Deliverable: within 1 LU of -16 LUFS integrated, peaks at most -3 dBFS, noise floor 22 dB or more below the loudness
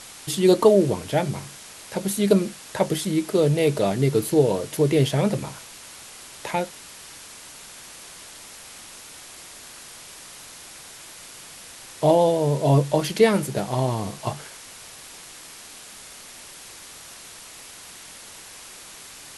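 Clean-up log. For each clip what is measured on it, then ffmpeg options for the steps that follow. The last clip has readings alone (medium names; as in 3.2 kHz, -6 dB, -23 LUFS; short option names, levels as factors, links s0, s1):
noise floor -43 dBFS; noise floor target -44 dBFS; loudness -22.0 LUFS; peak level -3.5 dBFS; loudness target -16.0 LUFS
-> -af "afftdn=nr=6:nf=-43"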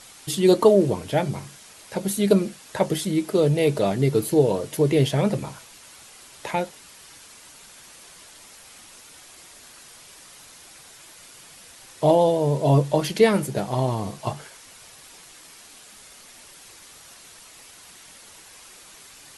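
noise floor -48 dBFS; loudness -22.0 LUFS; peak level -4.0 dBFS; loudness target -16.0 LUFS
-> -af "volume=2,alimiter=limit=0.708:level=0:latency=1"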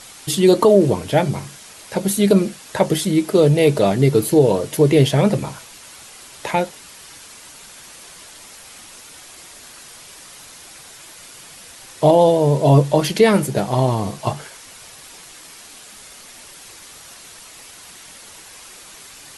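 loudness -16.5 LUFS; peak level -3.0 dBFS; noise floor -42 dBFS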